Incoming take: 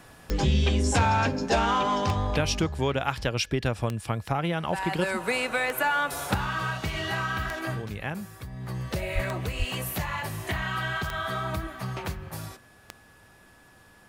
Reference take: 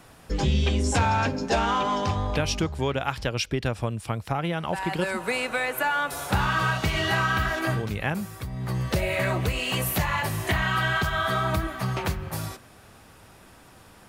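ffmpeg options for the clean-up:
ffmpeg -i in.wav -filter_complex "[0:a]adeclick=threshold=4,bandreject=frequency=1700:width=30,asplit=3[link_01][link_02][link_03];[link_01]afade=type=out:start_time=9.14:duration=0.02[link_04];[link_02]highpass=frequency=140:width=0.5412,highpass=frequency=140:width=1.3066,afade=type=in:start_time=9.14:duration=0.02,afade=type=out:start_time=9.26:duration=0.02[link_05];[link_03]afade=type=in:start_time=9.26:duration=0.02[link_06];[link_04][link_05][link_06]amix=inputs=3:normalize=0,asplit=3[link_07][link_08][link_09];[link_07]afade=type=out:start_time=9.58:duration=0.02[link_10];[link_08]highpass=frequency=140:width=0.5412,highpass=frequency=140:width=1.3066,afade=type=in:start_time=9.58:duration=0.02,afade=type=out:start_time=9.7:duration=0.02[link_11];[link_09]afade=type=in:start_time=9.7:duration=0.02[link_12];[link_10][link_11][link_12]amix=inputs=3:normalize=0,asetnsamples=nb_out_samples=441:pad=0,asendcmd='6.34 volume volume 5.5dB',volume=0dB" out.wav

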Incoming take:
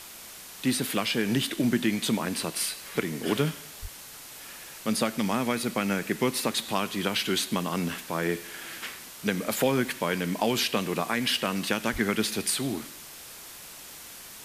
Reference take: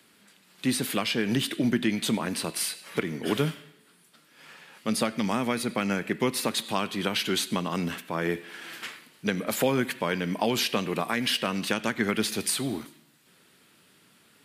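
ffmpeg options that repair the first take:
ffmpeg -i in.wav -filter_complex "[0:a]asplit=3[link_01][link_02][link_03];[link_01]afade=type=out:start_time=3.81:duration=0.02[link_04];[link_02]highpass=frequency=140:width=0.5412,highpass=frequency=140:width=1.3066,afade=type=in:start_time=3.81:duration=0.02,afade=type=out:start_time=3.93:duration=0.02[link_05];[link_03]afade=type=in:start_time=3.93:duration=0.02[link_06];[link_04][link_05][link_06]amix=inputs=3:normalize=0,asplit=3[link_07][link_08][link_09];[link_07]afade=type=out:start_time=11.92:duration=0.02[link_10];[link_08]highpass=frequency=140:width=0.5412,highpass=frequency=140:width=1.3066,afade=type=in:start_time=11.92:duration=0.02,afade=type=out:start_time=12.04:duration=0.02[link_11];[link_09]afade=type=in:start_time=12.04:duration=0.02[link_12];[link_10][link_11][link_12]amix=inputs=3:normalize=0,afwtdn=0.0071" out.wav

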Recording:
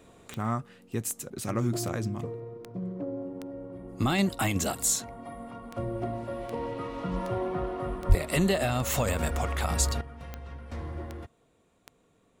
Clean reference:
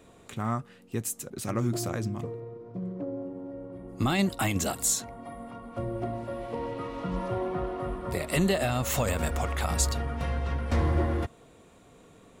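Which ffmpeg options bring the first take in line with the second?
ffmpeg -i in.wav -filter_complex "[0:a]adeclick=threshold=4,asplit=3[link_01][link_02][link_03];[link_01]afade=type=out:start_time=8.08:duration=0.02[link_04];[link_02]highpass=frequency=140:width=0.5412,highpass=frequency=140:width=1.3066,afade=type=in:start_time=8.08:duration=0.02,afade=type=out:start_time=8.2:duration=0.02[link_05];[link_03]afade=type=in:start_time=8.2:duration=0.02[link_06];[link_04][link_05][link_06]amix=inputs=3:normalize=0,asetnsamples=nb_out_samples=441:pad=0,asendcmd='10.01 volume volume 12dB',volume=0dB" out.wav

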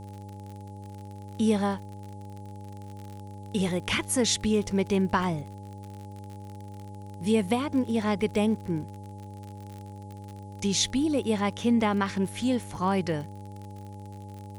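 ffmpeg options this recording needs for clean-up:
ffmpeg -i in.wav -af "adeclick=threshold=4,bandreject=frequency=99.8:width_type=h:width=4,bandreject=frequency=199.6:width_type=h:width=4,bandreject=frequency=299.4:width_type=h:width=4,bandreject=frequency=399.2:width_type=h:width=4,bandreject=frequency=499:width_type=h:width=4,bandreject=frequency=598.8:width_type=h:width=4,bandreject=frequency=840:width=30,agate=range=-21dB:threshold=-34dB" out.wav

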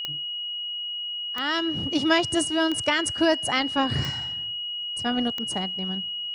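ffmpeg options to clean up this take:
ffmpeg -i in.wav -af "adeclick=threshold=4,bandreject=frequency=2900:width=30" out.wav

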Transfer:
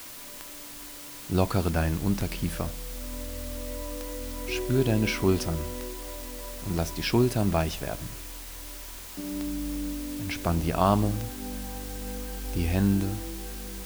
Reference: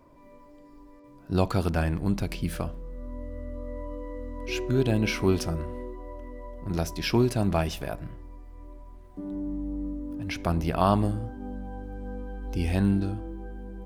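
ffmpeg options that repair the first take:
ffmpeg -i in.wav -af "adeclick=threshold=4,afwtdn=0.0071" out.wav

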